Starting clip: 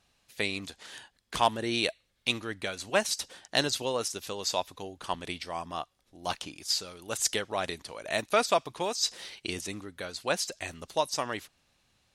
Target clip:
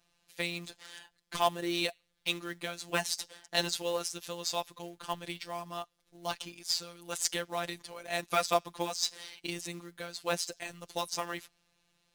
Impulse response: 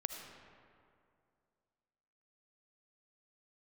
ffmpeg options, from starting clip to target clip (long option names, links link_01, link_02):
-af "acrusher=bits=4:mode=log:mix=0:aa=0.000001,afftfilt=real='hypot(re,im)*cos(PI*b)':imag='0':win_size=1024:overlap=0.75"